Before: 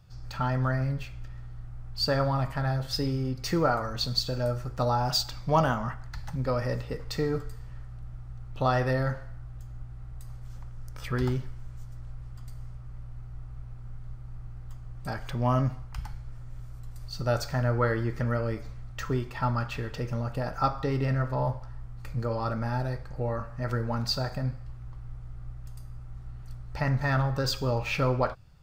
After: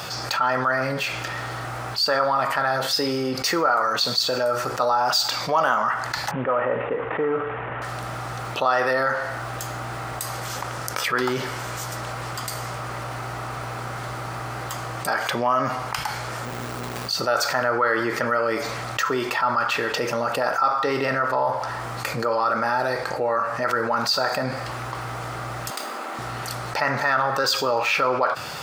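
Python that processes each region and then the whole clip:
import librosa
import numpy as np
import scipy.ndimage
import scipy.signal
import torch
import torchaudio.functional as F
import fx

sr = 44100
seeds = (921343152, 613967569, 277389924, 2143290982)

y = fx.chain(x, sr, fx.cvsd(bps=16000),
    fx.lowpass(hz=1400.0, slope=12), at=(6.31, 7.82))
y = fx.chain(y, sr, fx.resample_bad(factor=2, down='none', up='hold'),
    fx.running_max(window=65), at=(16.45, 17.09))
y = fx.chain(y, sr, fx.ellip_highpass(hz=210.0, order=4, stop_db=40),
    fx.notch(hz=5800.0, q=6.0),
    fx.running_max(window=3), at=(25.7, 26.19))
y = fx.dynamic_eq(y, sr, hz=1300.0, q=1.9, threshold_db=-44.0, ratio=4.0, max_db=6)
y = scipy.signal.sosfilt(scipy.signal.butter(2, 470.0, 'highpass', fs=sr, output='sos'), y)
y = fx.env_flatten(y, sr, amount_pct=70)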